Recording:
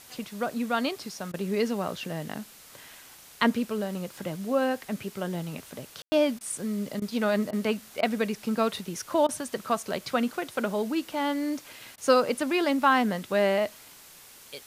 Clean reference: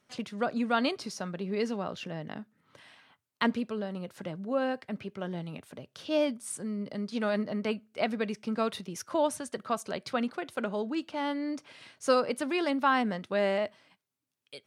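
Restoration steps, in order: room tone fill 6.02–6.12 s; interpolate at 1.32/6.39/7.00/7.51/8.01/9.27/11.96 s, 17 ms; noise print and reduce 17 dB; gain correction -4 dB, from 1.32 s

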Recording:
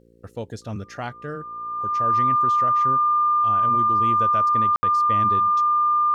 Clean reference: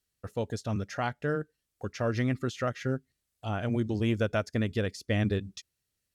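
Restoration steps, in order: de-hum 57.6 Hz, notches 9; band-stop 1.2 kHz, Q 30; room tone fill 4.76–4.83 s; trim 0 dB, from 1.20 s +3 dB

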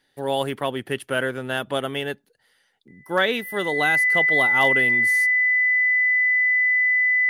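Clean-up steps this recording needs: clip repair -8.5 dBFS; band-stop 2 kHz, Q 30

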